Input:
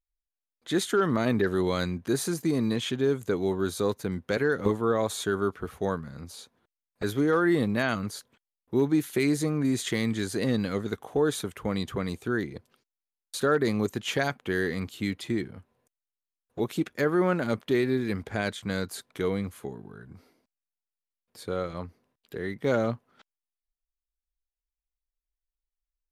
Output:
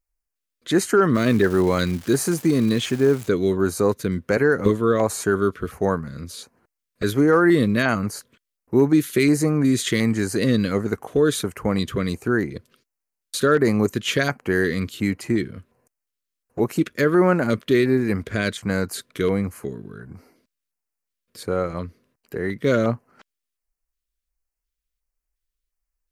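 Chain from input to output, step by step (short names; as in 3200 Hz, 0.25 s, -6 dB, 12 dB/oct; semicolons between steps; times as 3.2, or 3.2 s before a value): LFO notch square 1.4 Hz 820–3500 Hz; 1.14–3.27 crackle 520/s -37 dBFS; gain +7.5 dB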